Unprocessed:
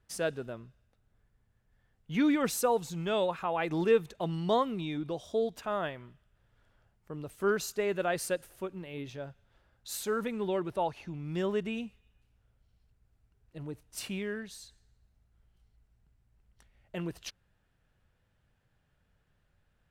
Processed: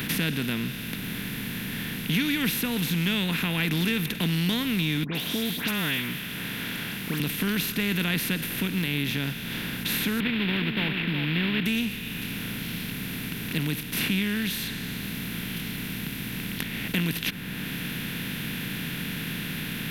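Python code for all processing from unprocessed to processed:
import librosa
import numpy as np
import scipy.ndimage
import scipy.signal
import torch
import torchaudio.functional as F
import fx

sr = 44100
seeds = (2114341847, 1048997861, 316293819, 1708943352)

y = fx.chain(x, sr, fx.block_float(bits=7),
    fx.highpass(hz=670.0, slope=6),
    fx.dispersion(late='highs', ms=115.0, hz=2400.0), at=(5.04, 7.2))
y = fx.chain(y, sr, fx.cvsd(bps=16000),
    fx.peak_eq(hz=60.0, db=-13.5, octaves=2.1),
    fx.echo_single(ms=367, db=-16.0), at=(10.2, 11.66))
y = fx.bin_compress(y, sr, power=0.4)
y = fx.curve_eq(y, sr, hz=(190.0, 570.0, 1200.0, 1800.0, 3200.0, 8000.0, 12000.0), db=(0, -26, -19, -4, 2, -14, 4))
y = fx.band_squash(y, sr, depth_pct=70)
y = y * 10.0 ** (8.0 / 20.0)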